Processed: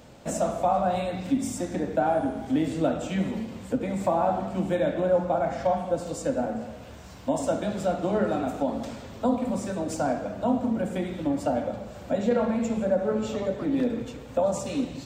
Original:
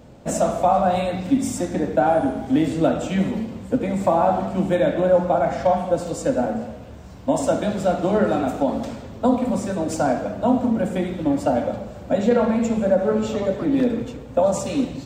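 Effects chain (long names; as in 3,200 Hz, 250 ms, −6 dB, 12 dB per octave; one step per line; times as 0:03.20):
one half of a high-frequency compander encoder only
level −6 dB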